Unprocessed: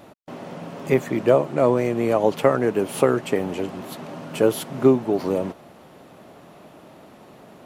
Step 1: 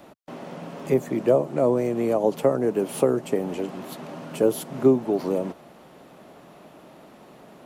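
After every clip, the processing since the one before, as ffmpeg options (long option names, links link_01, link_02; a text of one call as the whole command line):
ffmpeg -i in.wav -filter_complex "[0:a]equalizer=frequency=98:width_type=o:width=0.31:gain=-13,acrossover=split=270|890|5400[link_01][link_02][link_03][link_04];[link_03]acompressor=threshold=-40dB:ratio=6[link_05];[link_01][link_02][link_05][link_04]amix=inputs=4:normalize=0,volume=-1.5dB" out.wav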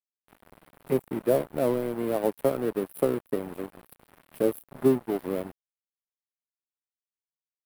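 ffmpeg -i in.wav -af "aemphasis=mode=reproduction:type=75kf,aeval=exprs='sgn(val(0))*max(abs(val(0))-0.0237,0)':channel_layout=same,aexciter=amount=9.6:drive=7.2:freq=9300,volume=-3dB" out.wav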